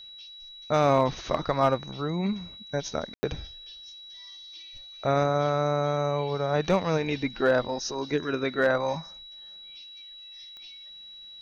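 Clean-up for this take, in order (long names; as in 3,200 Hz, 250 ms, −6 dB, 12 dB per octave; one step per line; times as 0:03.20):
clipped peaks rebuilt −13 dBFS
click removal
notch filter 3,900 Hz, Q 30
ambience match 0:03.14–0:03.23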